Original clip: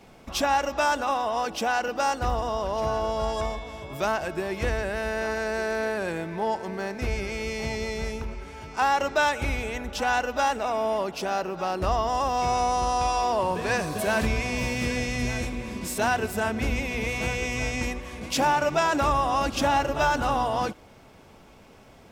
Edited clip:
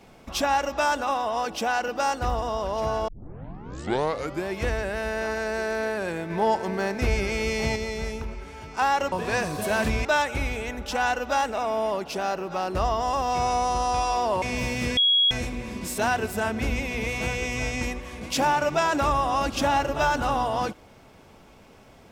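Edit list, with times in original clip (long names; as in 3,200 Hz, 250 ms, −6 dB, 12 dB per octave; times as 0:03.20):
0:03.08: tape start 1.40 s
0:06.30–0:07.76: clip gain +4.5 dB
0:13.49–0:14.42: move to 0:09.12
0:14.97–0:15.31: beep over 3,320 Hz −16.5 dBFS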